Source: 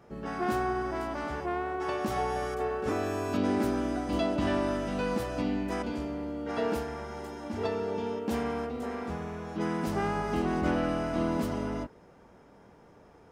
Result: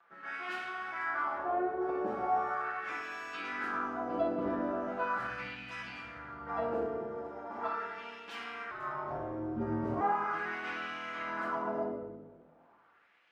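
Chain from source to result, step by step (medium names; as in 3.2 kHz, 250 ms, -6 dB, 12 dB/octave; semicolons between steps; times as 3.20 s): peaking EQ 1.4 kHz +8.5 dB 0.93 oct; crossover distortion -55 dBFS; 5.18–6.69 s: resonant low shelf 200 Hz +12.5 dB, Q 1.5; reverberation RT60 1.2 s, pre-delay 6 ms, DRR -4 dB; upward compressor, threshold -58 dBFS; wah-wah 0.39 Hz 440–2900 Hz, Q 2; 8.71–10.01 s: frequency shift -100 Hz; trim -2.5 dB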